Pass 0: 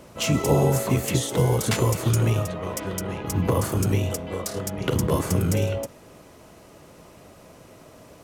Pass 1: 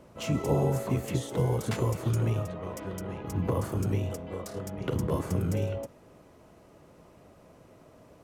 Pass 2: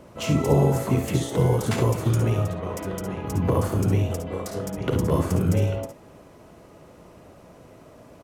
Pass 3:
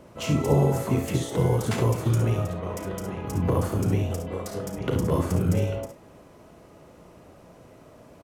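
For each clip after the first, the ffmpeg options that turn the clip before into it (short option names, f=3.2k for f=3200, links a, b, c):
-af "highshelf=f=2.1k:g=-8.5,volume=-6dB"
-af "aecho=1:1:57|69:0.316|0.335,volume=6dB"
-filter_complex "[0:a]asplit=2[a][b];[b]adelay=34,volume=-13dB[c];[a][c]amix=inputs=2:normalize=0,volume=-2dB"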